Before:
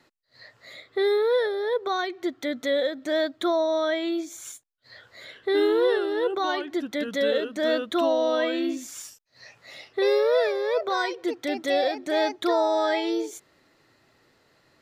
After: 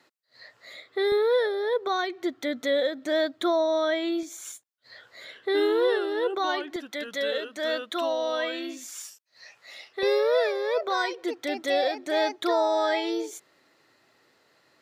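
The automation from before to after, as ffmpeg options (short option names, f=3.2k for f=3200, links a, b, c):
-af "asetnsamples=n=441:p=0,asendcmd='1.12 highpass f 130;4.23 highpass f 300;6.76 highpass f 840;10.03 highpass f 320',highpass=f=340:p=1"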